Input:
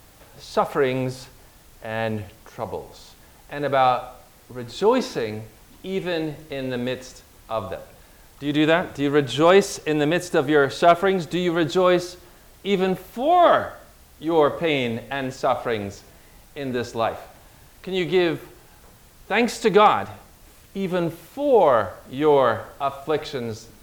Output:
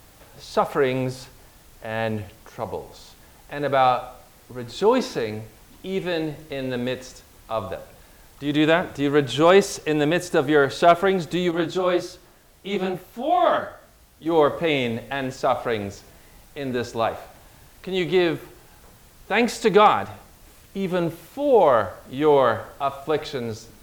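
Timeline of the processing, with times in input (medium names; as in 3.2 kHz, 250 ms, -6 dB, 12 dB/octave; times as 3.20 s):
11.51–14.26 s: detune thickener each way 55 cents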